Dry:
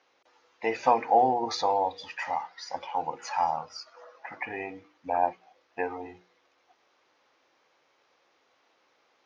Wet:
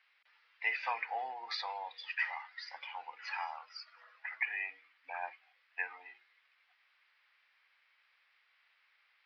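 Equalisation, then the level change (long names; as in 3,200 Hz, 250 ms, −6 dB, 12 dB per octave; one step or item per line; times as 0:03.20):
high-pass with resonance 2,000 Hz, resonance Q 1.8
elliptic low-pass filter 5,000 Hz, stop band 50 dB
high-shelf EQ 3,700 Hz −10 dB
0.0 dB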